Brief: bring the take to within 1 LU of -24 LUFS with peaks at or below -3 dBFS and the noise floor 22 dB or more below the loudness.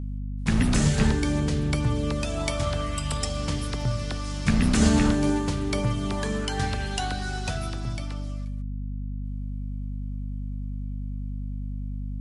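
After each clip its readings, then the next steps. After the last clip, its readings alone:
dropouts 1; longest dropout 1.8 ms; hum 50 Hz; harmonics up to 250 Hz; hum level -29 dBFS; loudness -27.5 LUFS; peak -6.5 dBFS; loudness target -24.0 LUFS
-> interpolate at 3.81, 1.8 ms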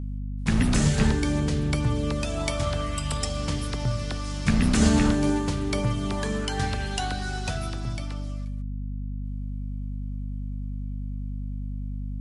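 dropouts 0; hum 50 Hz; harmonics up to 250 Hz; hum level -29 dBFS
-> notches 50/100/150/200/250 Hz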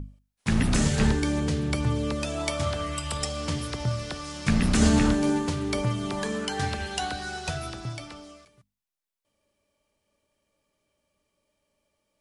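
hum none; loudness -27.0 LUFS; peak -7.5 dBFS; loudness target -24.0 LUFS
-> gain +3 dB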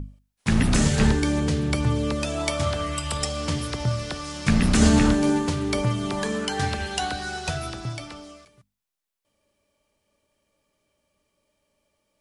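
loudness -24.0 LUFS; peak -4.5 dBFS; noise floor -79 dBFS

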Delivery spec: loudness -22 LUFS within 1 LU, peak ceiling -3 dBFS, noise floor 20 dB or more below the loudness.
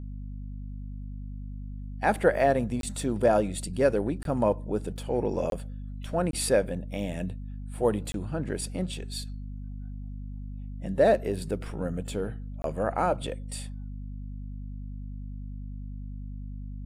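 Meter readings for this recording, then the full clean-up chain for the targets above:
dropouts 6; longest dropout 22 ms; hum 50 Hz; harmonics up to 250 Hz; hum level -35 dBFS; loudness -28.5 LUFS; peak -11.0 dBFS; loudness target -22.0 LUFS
-> interpolate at 2.81/4.23/5.5/6.31/8.12/12.62, 22 ms; notches 50/100/150/200/250 Hz; gain +6.5 dB

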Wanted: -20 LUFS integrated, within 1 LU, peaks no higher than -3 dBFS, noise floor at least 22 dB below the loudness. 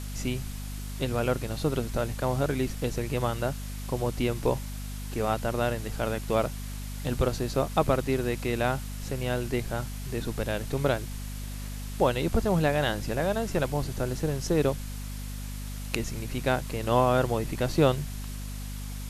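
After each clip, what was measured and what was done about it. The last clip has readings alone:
hum 50 Hz; harmonics up to 250 Hz; hum level -34 dBFS; noise floor -36 dBFS; noise floor target -52 dBFS; loudness -29.5 LUFS; peak -6.5 dBFS; loudness target -20.0 LUFS
-> notches 50/100/150/200/250 Hz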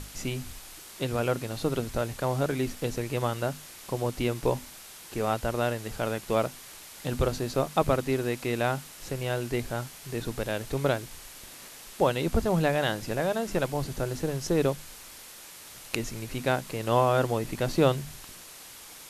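hum none; noise floor -47 dBFS; noise floor target -52 dBFS
-> denoiser 6 dB, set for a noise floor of -47 dBFS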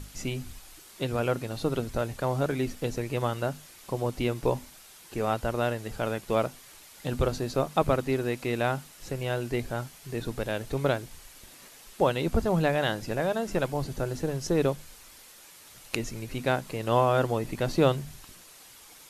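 noise floor -51 dBFS; noise floor target -52 dBFS
-> denoiser 6 dB, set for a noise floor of -51 dBFS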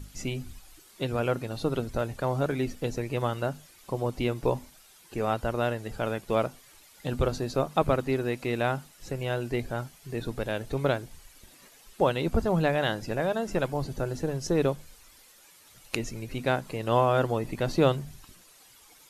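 noise floor -56 dBFS; loudness -29.5 LUFS; peak -8.0 dBFS; loudness target -20.0 LUFS
-> gain +9.5 dB; limiter -3 dBFS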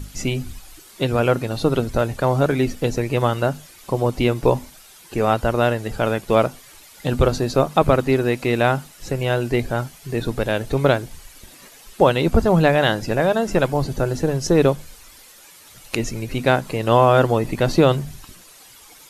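loudness -20.0 LUFS; peak -3.0 dBFS; noise floor -46 dBFS

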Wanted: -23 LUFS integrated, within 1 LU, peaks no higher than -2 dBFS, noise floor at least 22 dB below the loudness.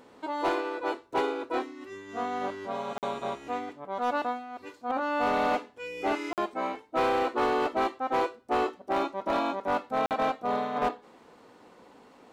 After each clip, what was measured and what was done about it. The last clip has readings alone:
clipped 1.2%; flat tops at -21.0 dBFS; dropouts 3; longest dropout 48 ms; loudness -30.5 LUFS; peak -21.0 dBFS; loudness target -23.0 LUFS
-> clip repair -21 dBFS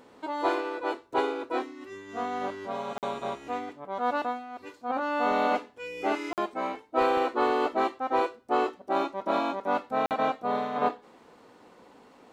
clipped 0.0%; dropouts 3; longest dropout 48 ms
-> interpolate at 2.98/6.33/10.06, 48 ms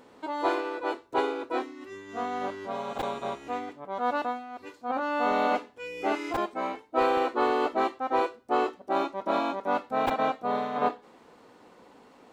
dropouts 0; loudness -29.5 LUFS; peak -12.0 dBFS; loudness target -23.0 LUFS
-> gain +6.5 dB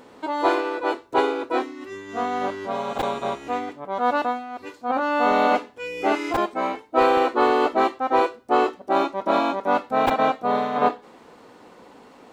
loudness -23.0 LUFS; peak -5.5 dBFS; noise floor -50 dBFS

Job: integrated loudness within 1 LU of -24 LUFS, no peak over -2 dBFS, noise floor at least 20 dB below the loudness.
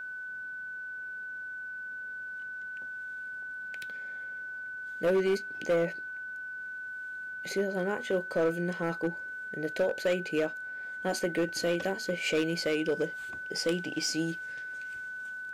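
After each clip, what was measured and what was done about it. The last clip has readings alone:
clipped 1.1%; flat tops at -22.0 dBFS; steady tone 1500 Hz; tone level -37 dBFS; loudness -33.0 LUFS; peak -22.0 dBFS; loudness target -24.0 LUFS
-> clip repair -22 dBFS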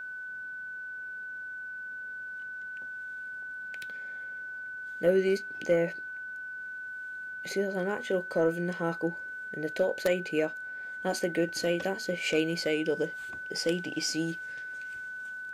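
clipped 0.0%; steady tone 1500 Hz; tone level -37 dBFS
-> notch 1500 Hz, Q 30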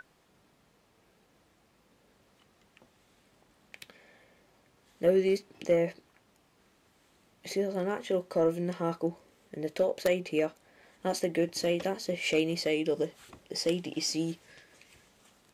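steady tone none; loudness -31.0 LUFS; peak -13.5 dBFS; loudness target -24.0 LUFS
-> gain +7 dB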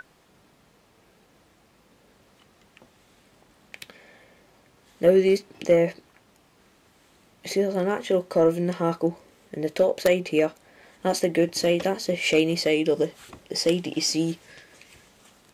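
loudness -24.0 LUFS; peak -6.5 dBFS; noise floor -60 dBFS

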